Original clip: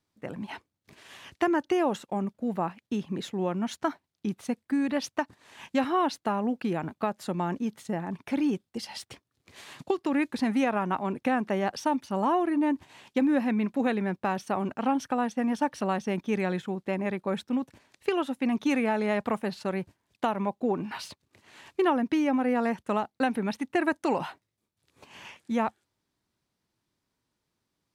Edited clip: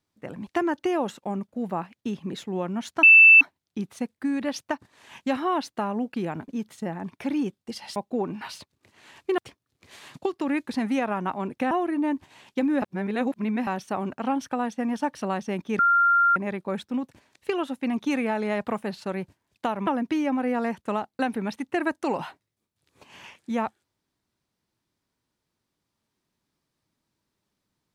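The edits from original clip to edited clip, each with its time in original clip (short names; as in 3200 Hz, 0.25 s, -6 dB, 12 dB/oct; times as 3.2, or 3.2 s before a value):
0.47–1.33 cut
3.89 add tone 2650 Hz -8.5 dBFS 0.38 s
6.96–7.55 cut
11.36–12.3 cut
13.41–14.26 reverse
16.38–16.95 bleep 1390 Hz -16 dBFS
20.46–21.88 move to 9.03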